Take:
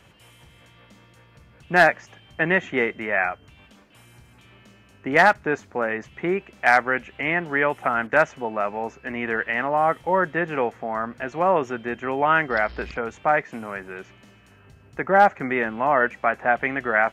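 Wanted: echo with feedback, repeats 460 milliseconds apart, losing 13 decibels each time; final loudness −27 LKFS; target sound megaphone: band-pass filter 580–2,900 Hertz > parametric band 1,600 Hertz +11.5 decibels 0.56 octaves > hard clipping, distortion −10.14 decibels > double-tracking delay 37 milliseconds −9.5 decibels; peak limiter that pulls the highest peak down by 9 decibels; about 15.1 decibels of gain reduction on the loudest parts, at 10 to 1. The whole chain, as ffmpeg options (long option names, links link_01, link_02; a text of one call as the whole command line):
ffmpeg -i in.wav -filter_complex "[0:a]acompressor=threshold=-26dB:ratio=10,alimiter=limit=-21.5dB:level=0:latency=1,highpass=580,lowpass=2900,equalizer=frequency=1600:width_type=o:width=0.56:gain=11.5,aecho=1:1:460|920|1380:0.224|0.0493|0.0108,asoftclip=type=hard:threshold=-25.5dB,asplit=2[link_01][link_02];[link_02]adelay=37,volume=-9.5dB[link_03];[link_01][link_03]amix=inputs=2:normalize=0,volume=4.5dB" out.wav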